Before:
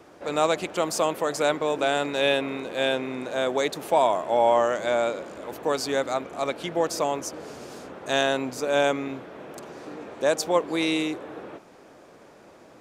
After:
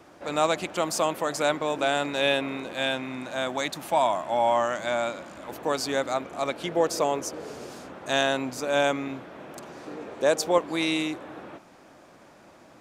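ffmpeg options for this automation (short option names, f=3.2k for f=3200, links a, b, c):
-af "asetnsamples=n=441:p=0,asendcmd='2.73 equalizer g -15;5.49 equalizer g -4;6.63 equalizer g 2.5;7.71 equalizer g -5.5;9.88 equalizer g 1.5;10.58 equalizer g -8',equalizer=f=440:t=o:w=0.48:g=-5.5"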